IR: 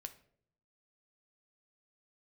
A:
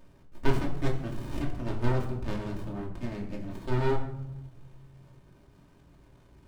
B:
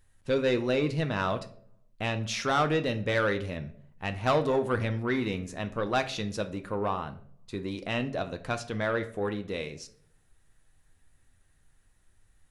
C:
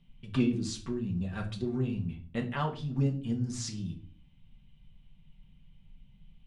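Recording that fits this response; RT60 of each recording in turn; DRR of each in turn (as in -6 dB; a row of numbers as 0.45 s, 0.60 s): B; 1.0 s, 0.60 s, 0.45 s; -1.5 dB, 7.5 dB, 0.5 dB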